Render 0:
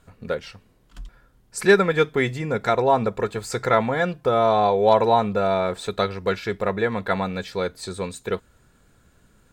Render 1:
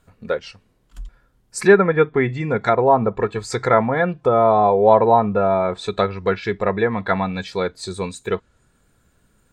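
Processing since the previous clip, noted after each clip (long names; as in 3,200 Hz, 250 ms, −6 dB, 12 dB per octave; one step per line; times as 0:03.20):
treble cut that deepens with the level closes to 1,800 Hz, closed at −17 dBFS
noise reduction from a noise print of the clip's start 7 dB
level +4 dB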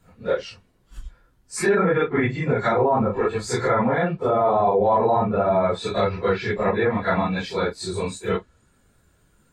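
random phases in long frames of 100 ms
brickwall limiter −11 dBFS, peak gain reduction 11 dB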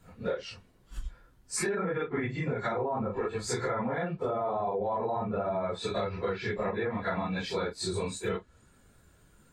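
downward compressor, threshold −29 dBFS, peak gain reduction 13.5 dB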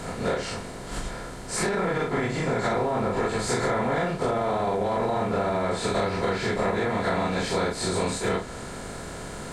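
compressor on every frequency bin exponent 0.4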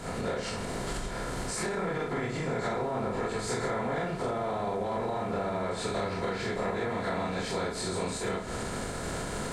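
camcorder AGC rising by 64 dB per second
convolution reverb RT60 1.5 s, pre-delay 73 ms, DRR 13.5 dB
level −6.5 dB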